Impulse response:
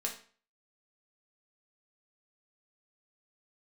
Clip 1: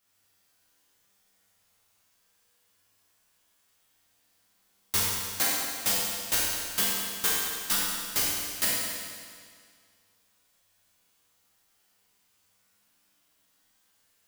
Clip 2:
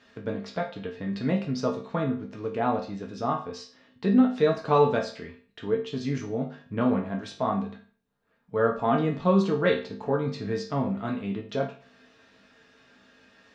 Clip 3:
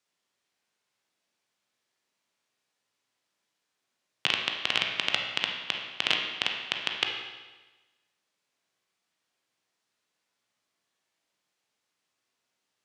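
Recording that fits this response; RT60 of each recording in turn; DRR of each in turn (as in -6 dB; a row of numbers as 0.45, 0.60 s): 2; 2.0, 0.45, 1.2 s; -8.0, -1.0, 1.0 dB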